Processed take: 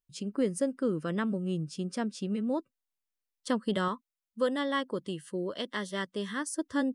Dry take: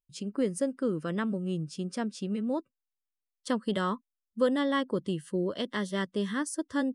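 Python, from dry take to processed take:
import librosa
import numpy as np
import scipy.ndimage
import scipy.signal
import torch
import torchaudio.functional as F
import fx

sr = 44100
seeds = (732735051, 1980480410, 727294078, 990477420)

y = fx.low_shelf(x, sr, hz=360.0, db=-7.5, at=(3.88, 6.48))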